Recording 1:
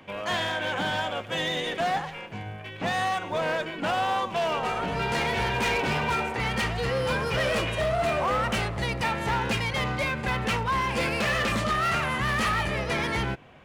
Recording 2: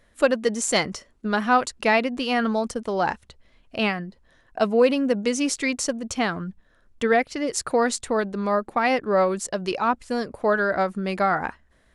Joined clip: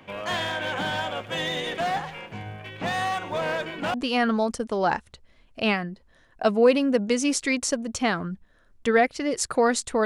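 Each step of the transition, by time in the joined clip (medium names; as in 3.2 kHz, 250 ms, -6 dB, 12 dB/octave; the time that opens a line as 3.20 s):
recording 1
3.94 s: go over to recording 2 from 2.10 s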